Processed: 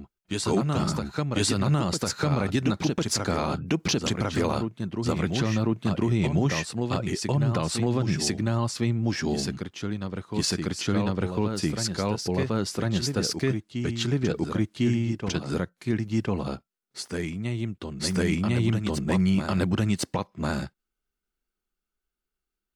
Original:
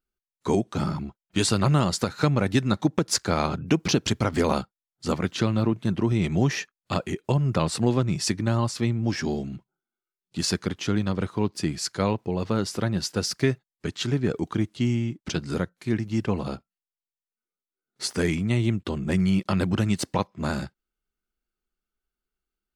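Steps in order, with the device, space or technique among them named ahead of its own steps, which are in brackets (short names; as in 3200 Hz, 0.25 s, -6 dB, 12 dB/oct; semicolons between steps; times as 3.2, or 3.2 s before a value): reverse echo 1.051 s -6.5 dB; clipper into limiter (hard clip -8 dBFS, distortion -43 dB; limiter -14 dBFS, peak gain reduction 6 dB)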